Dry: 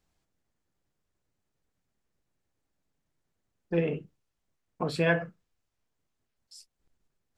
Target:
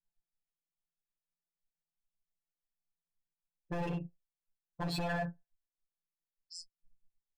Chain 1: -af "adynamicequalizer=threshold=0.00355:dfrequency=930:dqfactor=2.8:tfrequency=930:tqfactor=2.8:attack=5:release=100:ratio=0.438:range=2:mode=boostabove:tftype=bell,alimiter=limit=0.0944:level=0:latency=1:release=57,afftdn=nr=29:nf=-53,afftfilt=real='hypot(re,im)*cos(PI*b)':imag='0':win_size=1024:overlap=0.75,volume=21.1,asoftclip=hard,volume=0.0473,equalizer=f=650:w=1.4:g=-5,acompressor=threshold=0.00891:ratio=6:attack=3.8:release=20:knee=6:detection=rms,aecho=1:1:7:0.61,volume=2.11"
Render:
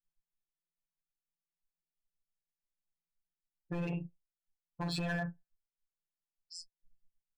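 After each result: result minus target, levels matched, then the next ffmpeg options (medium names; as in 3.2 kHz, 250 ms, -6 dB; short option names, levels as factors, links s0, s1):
overload inside the chain: distortion -6 dB; 500 Hz band -2.5 dB
-af "adynamicequalizer=threshold=0.00355:dfrequency=930:dqfactor=2.8:tfrequency=930:tqfactor=2.8:attack=5:release=100:ratio=0.438:range=2:mode=boostabove:tftype=bell,alimiter=limit=0.0944:level=0:latency=1:release=57,afftdn=nr=29:nf=-53,afftfilt=real='hypot(re,im)*cos(PI*b)':imag='0':win_size=1024:overlap=0.75,volume=47.3,asoftclip=hard,volume=0.0211,equalizer=f=650:w=1.4:g=-5,acompressor=threshold=0.00891:ratio=6:attack=3.8:release=20:knee=6:detection=rms,aecho=1:1:7:0.61,volume=2.11"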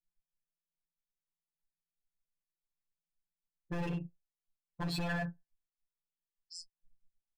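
500 Hz band -3.0 dB
-af "adynamicequalizer=threshold=0.00355:dfrequency=930:dqfactor=2.8:tfrequency=930:tqfactor=2.8:attack=5:release=100:ratio=0.438:range=2:mode=boostabove:tftype=bell,alimiter=limit=0.0944:level=0:latency=1:release=57,afftdn=nr=29:nf=-53,afftfilt=real='hypot(re,im)*cos(PI*b)':imag='0':win_size=1024:overlap=0.75,volume=47.3,asoftclip=hard,volume=0.0211,equalizer=f=650:w=1.4:g=2,acompressor=threshold=0.00891:ratio=6:attack=3.8:release=20:knee=6:detection=rms,aecho=1:1:7:0.61,volume=2.11"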